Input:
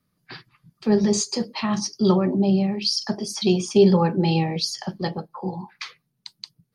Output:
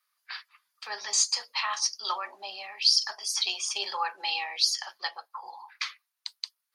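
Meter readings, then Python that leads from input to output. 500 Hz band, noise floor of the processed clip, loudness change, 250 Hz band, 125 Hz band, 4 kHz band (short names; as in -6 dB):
-25.5 dB, -83 dBFS, -6.0 dB, under -40 dB, under -40 dB, +2.0 dB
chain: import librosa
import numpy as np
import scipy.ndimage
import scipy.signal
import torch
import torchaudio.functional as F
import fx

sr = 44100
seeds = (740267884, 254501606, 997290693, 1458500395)

y = scipy.signal.sosfilt(scipy.signal.butter(4, 1000.0, 'highpass', fs=sr, output='sos'), x)
y = F.gain(torch.from_numpy(y), 2.0).numpy()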